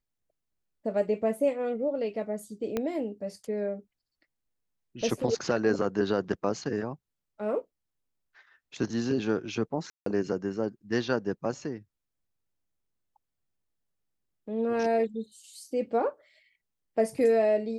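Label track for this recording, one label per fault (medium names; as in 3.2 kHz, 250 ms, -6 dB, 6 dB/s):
2.770000	2.770000	pop -16 dBFS
9.900000	10.060000	dropout 163 ms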